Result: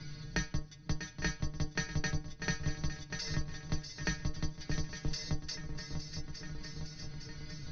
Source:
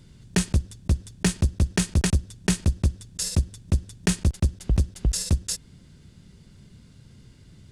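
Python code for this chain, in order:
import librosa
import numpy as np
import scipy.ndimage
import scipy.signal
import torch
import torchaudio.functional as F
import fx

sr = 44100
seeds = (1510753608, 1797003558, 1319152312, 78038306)

y = fx.octave_divider(x, sr, octaves=2, level_db=-2.0)
y = scipy.signal.sosfilt(scipy.signal.cheby1(6, 9, 6200.0, 'lowpass', fs=sr, output='sos'), y)
y = fx.stiff_resonator(y, sr, f0_hz=150.0, decay_s=0.21, stiffness=0.002)
y = fx.echo_swing(y, sr, ms=858, ratio=3, feedback_pct=44, wet_db=-12.5)
y = fx.band_squash(y, sr, depth_pct=70)
y = y * 10.0 ** (7.0 / 20.0)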